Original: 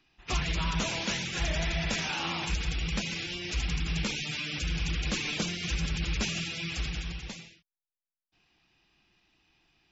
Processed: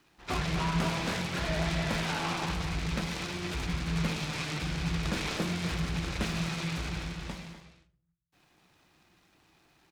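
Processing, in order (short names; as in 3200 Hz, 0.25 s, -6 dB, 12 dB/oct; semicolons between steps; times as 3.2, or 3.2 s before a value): median filter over 5 samples; HPF 99 Hz 6 dB/oct; tone controls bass 0 dB, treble -13 dB; notch 2800 Hz, Q 25; in parallel at -1.5 dB: compressor, threshold -47 dBFS, peak gain reduction 17.5 dB; on the sum: requantised 12-bit, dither none; speakerphone echo 0.25 s, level -9 dB; on a send at -6.5 dB: reverb RT60 0.50 s, pre-delay 6 ms; on the sum: noise-modulated delay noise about 1300 Hz, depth 0.066 ms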